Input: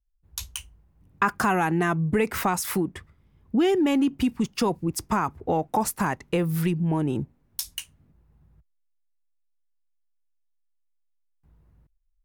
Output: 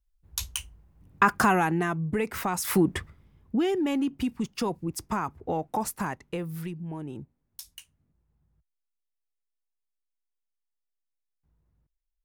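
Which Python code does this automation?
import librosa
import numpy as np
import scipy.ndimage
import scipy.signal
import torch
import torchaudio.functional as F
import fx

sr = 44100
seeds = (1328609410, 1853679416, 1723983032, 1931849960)

y = fx.gain(x, sr, db=fx.line((1.42, 2.0), (1.93, -5.0), (2.49, -5.0), (2.96, 8.0), (3.66, -5.0), (5.96, -5.0), (6.77, -12.0)))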